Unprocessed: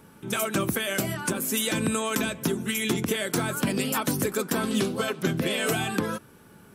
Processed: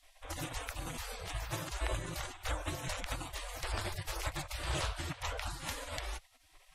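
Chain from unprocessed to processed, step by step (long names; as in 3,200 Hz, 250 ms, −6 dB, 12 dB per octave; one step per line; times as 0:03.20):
low-pass filter 10,000 Hz 12 dB per octave
low-shelf EQ 130 Hz −2 dB
in parallel at +2 dB: brickwall limiter −21.5 dBFS, peak gain reduction 8.5 dB
on the sum: gate on every frequency bin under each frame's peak −25 dB weak
spectral tilt −4 dB per octave
level +2 dB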